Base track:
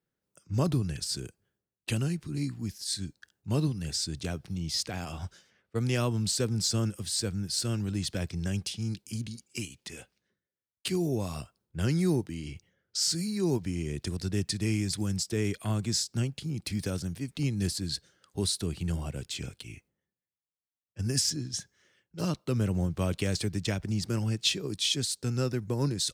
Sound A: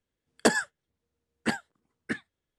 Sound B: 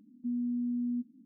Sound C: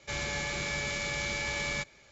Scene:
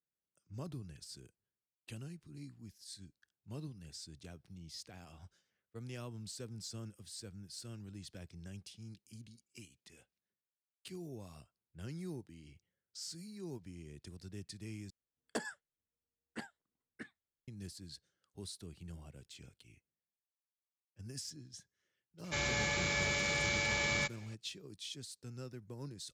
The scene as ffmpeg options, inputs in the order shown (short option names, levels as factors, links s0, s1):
-filter_complex "[0:a]volume=0.133[s0];[3:a]highpass=58[s1];[s0]asplit=2[s2][s3];[s2]atrim=end=14.904[s4];[1:a]atrim=end=2.58,asetpts=PTS-STARTPTS,volume=0.141[s5];[s3]atrim=start=17.476[s6];[s1]atrim=end=2.11,asetpts=PTS-STARTPTS,volume=0.944,afade=t=in:d=0.004:c=hsin,afade=t=out:st=2.106:d=0.004:c=hsin,adelay=22240[s7];[s4][s5]acrossfade=d=0.004:c1=hsin:c2=hsin[s8];[s8][s6]acrossfade=d=0.004:c1=hsin:c2=hsin[s9];[s9][s7]amix=inputs=2:normalize=0"